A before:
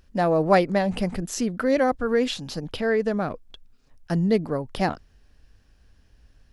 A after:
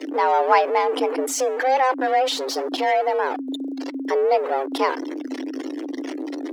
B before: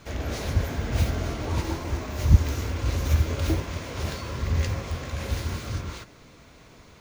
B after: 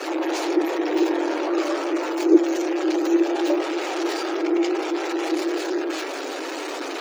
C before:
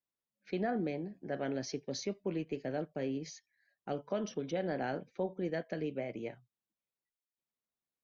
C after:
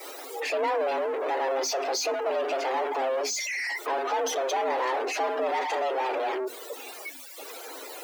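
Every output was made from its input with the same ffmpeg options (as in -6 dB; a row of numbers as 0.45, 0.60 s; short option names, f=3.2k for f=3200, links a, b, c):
-af "aeval=exprs='val(0)+0.5*0.0668*sgn(val(0))':c=same,afftdn=nr=24:nf=-37,afreqshift=260"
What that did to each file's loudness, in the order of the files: +2.0, +4.5, +9.5 LU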